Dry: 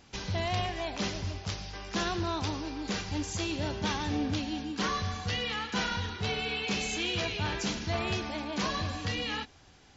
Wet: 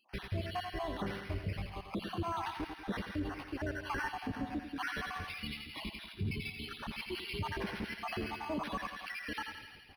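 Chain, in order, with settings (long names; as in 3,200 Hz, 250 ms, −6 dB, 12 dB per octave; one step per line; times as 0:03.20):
time-frequency cells dropped at random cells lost 72%
parametric band 3,400 Hz −8 dB 0.34 octaves
feedback echo with a band-pass in the loop 84 ms, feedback 78%, band-pass 2,700 Hz, level −6.5 dB
0:05.29–0:07.41: gain on a spectral selection 410–2,000 Hz −25 dB
repeating echo 96 ms, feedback 50%, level −11 dB
brickwall limiter −29 dBFS, peak gain reduction 6.5 dB
0:03.29–0:04.08: graphic EQ with 15 bands 160 Hz −10 dB, 1,600 Hz +8 dB, 4,000 Hz −9 dB
linearly interpolated sample-rate reduction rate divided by 6×
level +2 dB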